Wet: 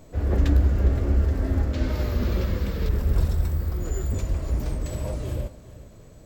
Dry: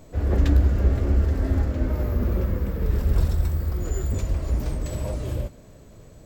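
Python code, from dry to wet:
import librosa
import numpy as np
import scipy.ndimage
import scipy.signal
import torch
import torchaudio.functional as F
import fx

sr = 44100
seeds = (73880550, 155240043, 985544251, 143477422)

y = fx.peak_eq(x, sr, hz=4100.0, db=13.5, octaves=1.8, at=(1.73, 2.89))
y = y + 10.0 ** (-18.0 / 20.0) * np.pad(y, (int(409 * sr / 1000.0), 0))[:len(y)]
y = y * librosa.db_to_amplitude(-1.0)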